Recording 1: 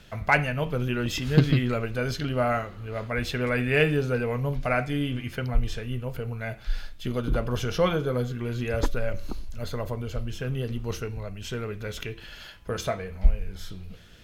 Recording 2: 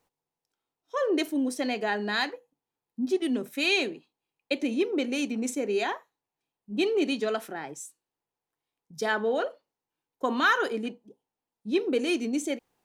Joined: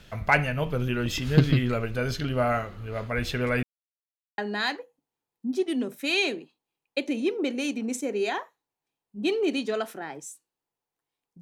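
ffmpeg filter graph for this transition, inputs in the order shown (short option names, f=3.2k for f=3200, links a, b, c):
-filter_complex "[0:a]apad=whole_dur=11.41,atrim=end=11.41,asplit=2[a][b];[a]atrim=end=3.63,asetpts=PTS-STARTPTS,afade=t=out:st=3.626:d=0.004:c=hsin[c];[b]atrim=start=3.63:end=4.38,asetpts=PTS-STARTPTS,volume=0[d];[1:a]atrim=start=1.92:end=8.95,asetpts=PTS-STARTPTS,afade=t=in:d=0.004:c=hsin[e];[c][d][e]concat=n=3:v=0:a=1"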